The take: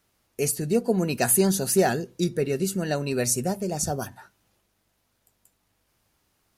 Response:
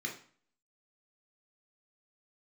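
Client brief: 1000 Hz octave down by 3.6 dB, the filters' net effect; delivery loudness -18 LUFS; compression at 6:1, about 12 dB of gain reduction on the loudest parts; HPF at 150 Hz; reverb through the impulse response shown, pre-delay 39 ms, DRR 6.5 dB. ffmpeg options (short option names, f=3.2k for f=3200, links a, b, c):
-filter_complex "[0:a]highpass=150,equalizer=f=1k:t=o:g=-6,acompressor=threshold=-30dB:ratio=6,asplit=2[a][b];[1:a]atrim=start_sample=2205,adelay=39[c];[b][c]afir=irnorm=-1:irlink=0,volume=-8.5dB[d];[a][d]amix=inputs=2:normalize=0,volume=15dB"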